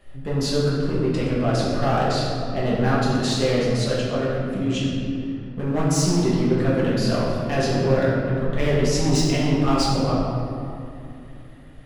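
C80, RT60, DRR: 1.0 dB, 2.6 s, −8.0 dB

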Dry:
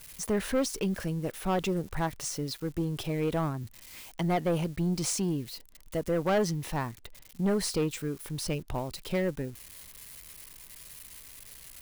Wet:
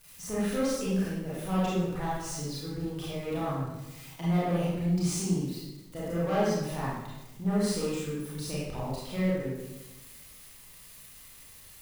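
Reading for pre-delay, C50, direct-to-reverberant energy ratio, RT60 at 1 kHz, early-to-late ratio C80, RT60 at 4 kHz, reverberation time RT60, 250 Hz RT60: 27 ms, −1.5 dB, −8.5 dB, 0.95 s, 1.5 dB, 0.80 s, 1.1 s, 1.3 s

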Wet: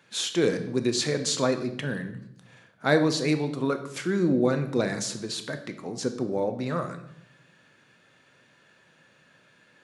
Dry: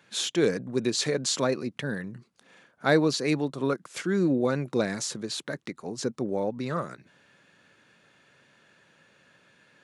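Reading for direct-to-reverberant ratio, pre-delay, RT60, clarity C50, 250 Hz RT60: 7.0 dB, 6 ms, 0.75 s, 11.0 dB, 1.0 s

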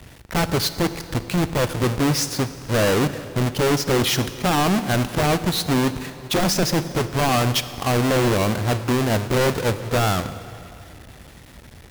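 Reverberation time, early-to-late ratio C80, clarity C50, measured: 2.5 s, 13.5 dB, 12.5 dB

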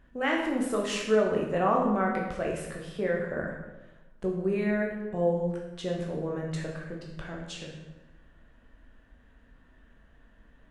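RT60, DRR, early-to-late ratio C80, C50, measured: 1.1 s, −1.5 dB, 6.0 dB, 3.5 dB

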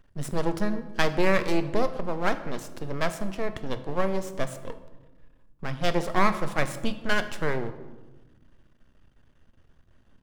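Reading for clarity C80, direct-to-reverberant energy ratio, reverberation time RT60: 14.0 dB, 9.0 dB, 1.2 s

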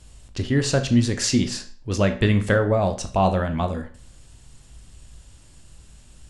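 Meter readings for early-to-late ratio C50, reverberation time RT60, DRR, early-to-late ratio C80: 12.0 dB, 0.45 s, 7.0 dB, 17.0 dB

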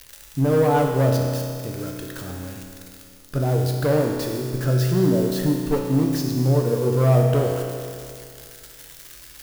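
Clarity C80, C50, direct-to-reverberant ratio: 3.5 dB, 2.0 dB, 0.0 dB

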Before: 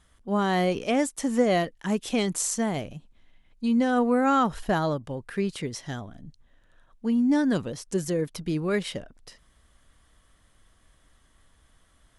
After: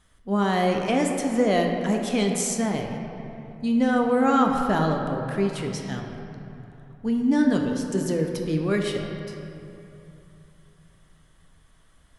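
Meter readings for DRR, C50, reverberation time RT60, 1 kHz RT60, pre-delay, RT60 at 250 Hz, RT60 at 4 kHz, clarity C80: 2.0 dB, 3.5 dB, 2.9 s, 2.9 s, 4 ms, 3.5 s, 1.7 s, 4.5 dB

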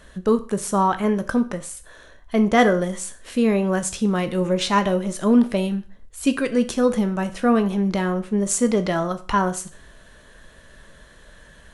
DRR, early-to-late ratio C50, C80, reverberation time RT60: 9.0 dB, 15.5 dB, 19.5 dB, 0.40 s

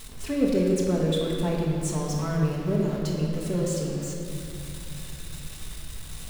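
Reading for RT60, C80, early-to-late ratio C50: 2.7 s, 2.0 dB, 0.5 dB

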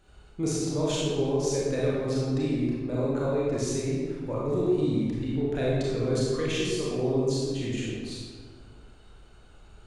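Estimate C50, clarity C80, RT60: −3.0 dB, 0.0 dB, 1.7 s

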